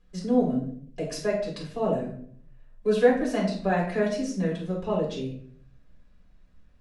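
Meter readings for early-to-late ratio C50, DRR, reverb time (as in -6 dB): 5.5 dB, -5.5 dB, 0.60 s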